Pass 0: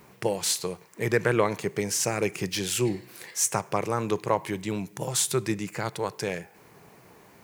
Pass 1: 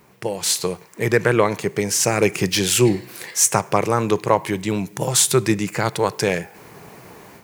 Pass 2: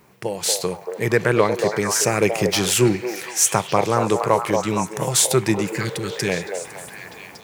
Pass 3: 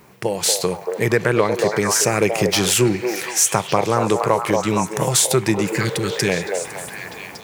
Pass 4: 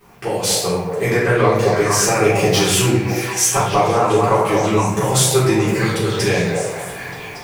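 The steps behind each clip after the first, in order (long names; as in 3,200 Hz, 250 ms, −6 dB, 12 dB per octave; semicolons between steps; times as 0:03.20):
automatic gain control gain up to 11 dB
healed spectral selection 0:05.54–0:06.26, 420–1,500 Hz before; echo through a band-pass that steps 232 ms, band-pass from 610 Hz, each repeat 0.7 octaves, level −2 dB; level −1 dB
downward compressor 2 to 1, threshold −21 dBFS, peak gain reduction 6 dB; level +5 dB
rectangular room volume 150 cubic metres, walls mixed, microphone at 3.6 metres; level −9.5 dB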